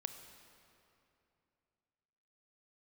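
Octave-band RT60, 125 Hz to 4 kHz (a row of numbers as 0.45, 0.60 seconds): 3.2, 3.1, 2.9, 2.7, 2.5, 2.0 seconds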